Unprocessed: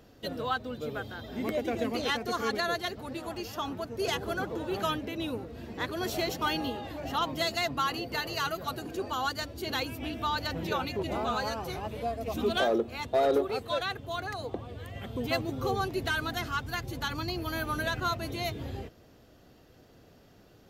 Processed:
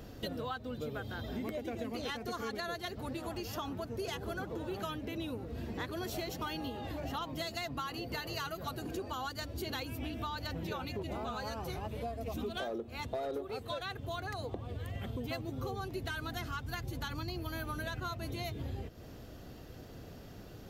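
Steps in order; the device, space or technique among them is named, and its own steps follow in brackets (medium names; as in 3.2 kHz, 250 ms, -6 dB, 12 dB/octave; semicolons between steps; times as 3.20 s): ASMR close-microphone chain (bass shelf 170 Hz +7 dB; compression, threshold -42 dBFS, peak gain reduction 19.5 dB; treble shelf 10 kHz +3.5 dB); trim +5 dB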